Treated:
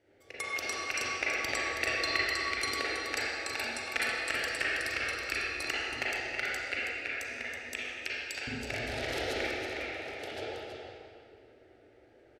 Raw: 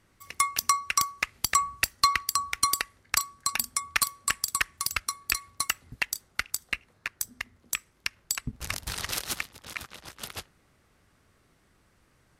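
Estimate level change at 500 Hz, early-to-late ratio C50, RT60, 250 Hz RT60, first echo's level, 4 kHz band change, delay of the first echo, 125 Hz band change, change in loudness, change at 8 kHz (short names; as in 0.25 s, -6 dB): +13.0 dB, -6.0 dB, 2.3 s, 2.4 s, -7.0 dB, -4.0 dB, 0.324 s, -3.0 dB, -4.0 dB, -13.5 dB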